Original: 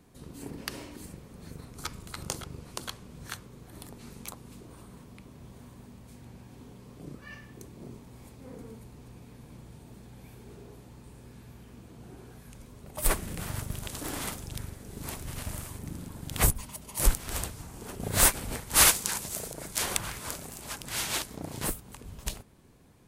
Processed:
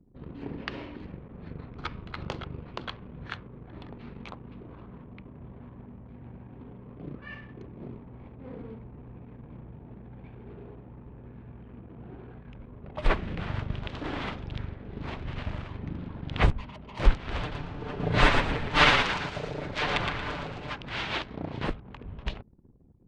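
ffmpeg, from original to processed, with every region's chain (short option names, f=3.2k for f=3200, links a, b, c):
-filter_complex "[0:a]asettb=1/sr,asplit=3[a][b][c];[a]atrim=end=17.404[d];[b]atrim=start=17.4:end=20.74,asetpts=PTS-STARTPTS,afade=t=in:d=0.004:c=qsin,afade=t=out:st=3.336:d=0.004:c=qsin,aecho=1:1:6.7:0.82,atrim=end_sample=147294,asplit=5[e][f][g][h][i];[f]adelay=115,afreqshift=-43,volume=-4.5dB[j];[g]adelay=230,afreqshift=-86,volume=-13.9dB[k];[h]adelay=345,afreqshift=-129,volume=-23.2dB[l];[i]adelay=460,afreqshift=-172,volume=-32.6dB[m];[e][j][k][l][m]amix=inputs=5:normalize=0,atrim=end_sample=147294[n];[c]atrim=start=20.736[o];[d][n]acrossfade=d=0.004:c1=hsin:c2=qsin[p];[p][o]acrossfade=d=0.004:c1=qsin:c2=hsin,lowpass=f=3.4k:w=0.5412,lowpass=f=3.4k:w=1.3066,anlmdn=0.000631,volume=3.5dB"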